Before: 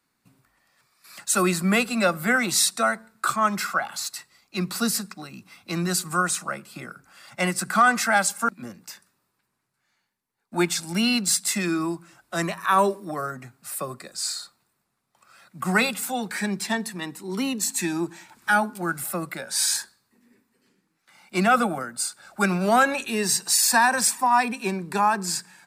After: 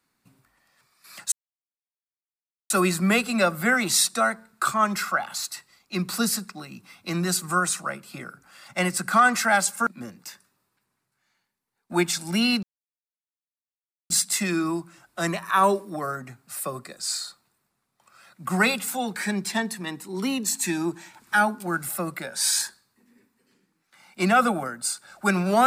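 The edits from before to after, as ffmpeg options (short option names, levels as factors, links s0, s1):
-filter_complex "[0:a]asplit=3[s0][s1][s2];[s0]atrim=end=1.32,asetpts=PTS-STARTPTS,afade=t=out:st=1.316:d=0.004:c=hsin,apad=pad_dur=1.38[s3];[s1]atrim=start=1.32:end=11.25,asetpts=PTS-STARTPTS,afade=t=in:d=0.004:c=hsin,afade=t=out:st=9.926:d=0.004:c=hsin,apad=pad_dur=1.47[s4];[s2]atrim=start=11.25,asetpts=PTS-STARTPTS,afade=t=in:d=0.004:c=hsin[s5];[s3][s4][s5]concat=n=3:v=0:a=1"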